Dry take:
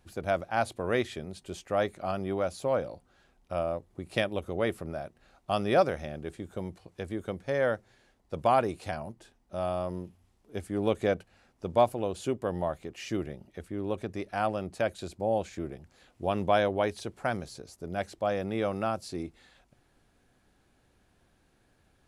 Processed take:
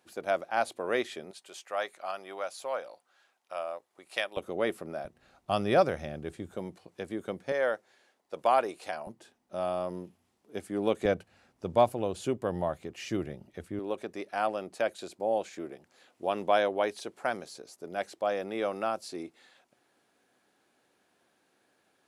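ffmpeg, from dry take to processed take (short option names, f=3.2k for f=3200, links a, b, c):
-af "asetnsamples=n=441:p=0,asendcmd='1.31 highpass f 770;4.37 highpass f 230;5.05 highpass f 72;6.56 highpass f 180;7.52 highpass f 410;9.07 highpass f 190;11.05 highpass f 81;13.79 highpass f 310',highpass=320"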